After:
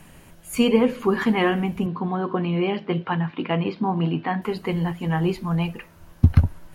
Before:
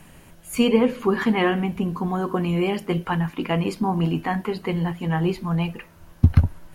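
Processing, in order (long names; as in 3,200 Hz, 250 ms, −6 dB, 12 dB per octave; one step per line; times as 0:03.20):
0:01.86–0:04.42: elliptic band-pass filter 110–3,900 Hz, stop band 40 dB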